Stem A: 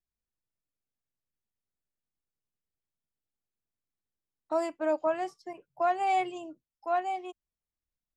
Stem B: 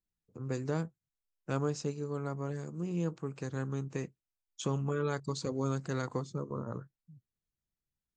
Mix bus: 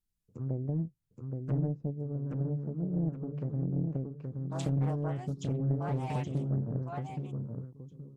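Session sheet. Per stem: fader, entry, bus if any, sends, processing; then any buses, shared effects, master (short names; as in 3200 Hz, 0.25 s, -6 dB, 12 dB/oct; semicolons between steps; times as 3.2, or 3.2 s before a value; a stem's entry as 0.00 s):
-14.0 dB, 0.00 s, no send, no echo send, dry
-4.5 dB, 0.00 s, no send, echo send -4 dB, treble ducked by the level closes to 380 Hz, closed at -32.5 dBFS; low shelf 240 Hz +12 dB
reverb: off
echo: feedback echo 0.823 s, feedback 34%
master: high shelf 5100 Hz +10 dB; Doppler distortion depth 0.82 ms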